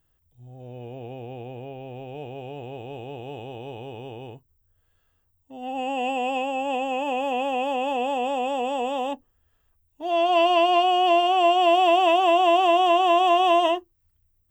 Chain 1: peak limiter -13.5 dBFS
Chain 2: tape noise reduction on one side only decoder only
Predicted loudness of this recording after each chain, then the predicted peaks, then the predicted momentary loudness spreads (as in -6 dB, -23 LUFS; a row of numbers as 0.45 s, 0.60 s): -22.5 LUFS, -21.5 LUFS; -13.5 dBFS, -9.0 dBFS; 18 LU, 20 LU